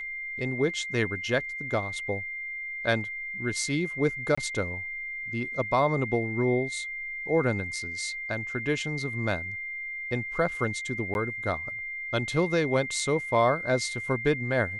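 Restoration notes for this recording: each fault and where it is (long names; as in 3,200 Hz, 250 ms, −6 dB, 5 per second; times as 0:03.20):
whistle 2,100 Hz −33 dBFS
0:04.35–0:04.38: drop-out 25 ms
0:11.14–0:11.15: drop-out 11 ms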